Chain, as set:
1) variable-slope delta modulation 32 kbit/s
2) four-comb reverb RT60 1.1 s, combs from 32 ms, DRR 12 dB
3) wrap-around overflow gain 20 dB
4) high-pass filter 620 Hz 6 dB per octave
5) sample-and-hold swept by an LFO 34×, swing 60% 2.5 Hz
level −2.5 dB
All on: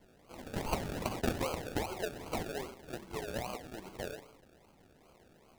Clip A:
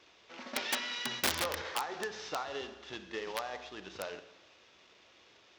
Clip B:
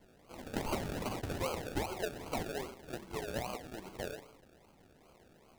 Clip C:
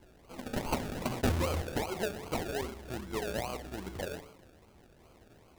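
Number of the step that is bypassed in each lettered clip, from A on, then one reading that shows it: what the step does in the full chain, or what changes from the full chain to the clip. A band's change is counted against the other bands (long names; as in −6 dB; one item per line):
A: 5, 125 Hz band −16.0 dB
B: 3, distortion level −1 dB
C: 4, 125 Hz band +3.0 dB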